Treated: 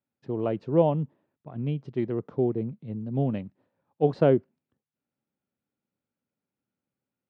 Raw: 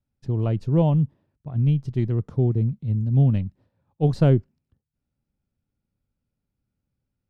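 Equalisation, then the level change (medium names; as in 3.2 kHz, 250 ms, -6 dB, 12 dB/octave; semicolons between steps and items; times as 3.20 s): dynamic bell 520 Hz, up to +4 dB, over -36 dBFS, Q 0.97; band-pass 260–2900 Hz; 0.0 dB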